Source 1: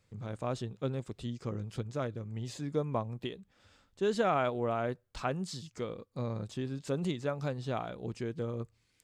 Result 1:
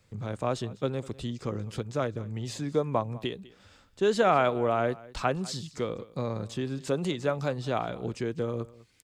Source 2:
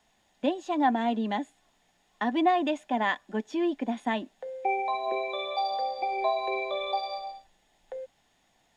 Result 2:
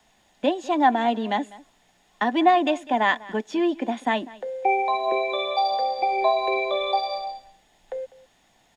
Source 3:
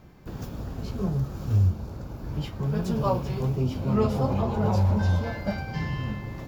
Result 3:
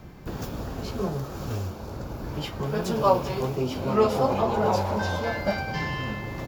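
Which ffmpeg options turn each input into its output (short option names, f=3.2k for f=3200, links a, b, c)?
-filter_complex "[0:a]acrossover=split=300|1100[a][b][c];[a]acompressor=threshold=-39dB:ratio=6[d];[d][b][c]amix=inputs=3:normalize=0,aecho=1:1:199:0.0944,volume=6.5dB"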